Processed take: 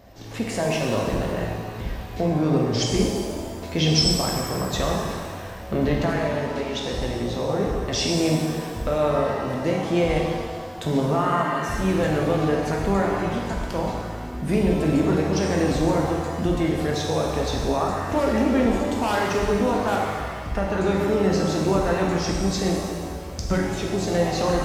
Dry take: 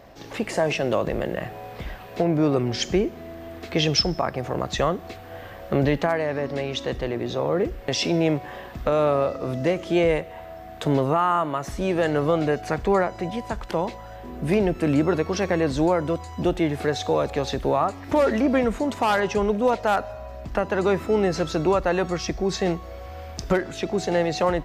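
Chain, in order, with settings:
bass and treble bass +7 dB, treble +6 dB
reverb with rising layers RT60 1.7 s, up +7 semitones, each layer −8 dB, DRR −1.5 dB
level −5.5 dB

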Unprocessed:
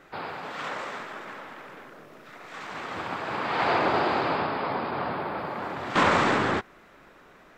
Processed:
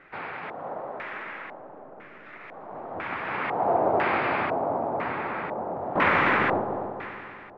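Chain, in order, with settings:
echo machine with several playback heads 95 ms, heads second and third, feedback 55%, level −9 dB
auto-filter low-pass square 1 Hz 710–2,200 Hz
level −3 dB

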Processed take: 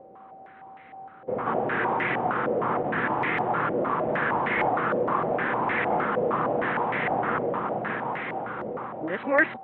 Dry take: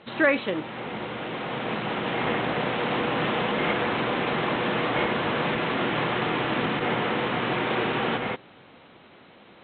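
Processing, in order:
played backwards from end to start
steady tone 770 Hz −47 dBFS
low-pass on a step sequencer 6.5 Hz 550–2,000 Hz
level −4 dB

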